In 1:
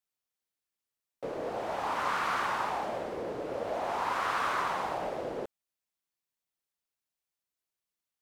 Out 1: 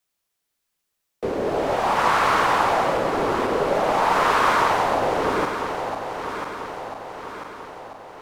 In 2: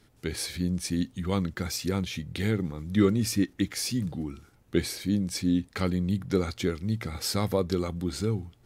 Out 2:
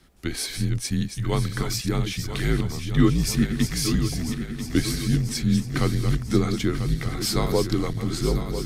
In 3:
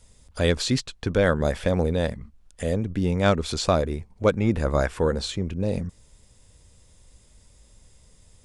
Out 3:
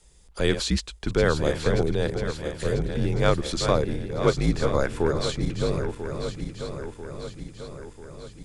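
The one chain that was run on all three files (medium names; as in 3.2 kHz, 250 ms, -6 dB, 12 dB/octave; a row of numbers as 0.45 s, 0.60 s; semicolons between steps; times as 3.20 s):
backward echo that repeats 496 ms, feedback 73%, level -8 dB; frequency shift -63 Hz; peak normalisation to -6 dBFS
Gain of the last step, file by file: +11.5 dB, +4.0 dB, -1.0 dB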